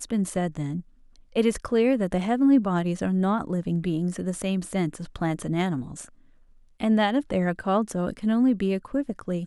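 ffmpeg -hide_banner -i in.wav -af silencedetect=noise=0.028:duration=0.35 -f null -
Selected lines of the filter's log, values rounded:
silence_start: 0.80
silence_end: 1.36 | silence_duration: 0.55
silence_start: 6.04
silence_end: 6.80 | silence_duration: 0.76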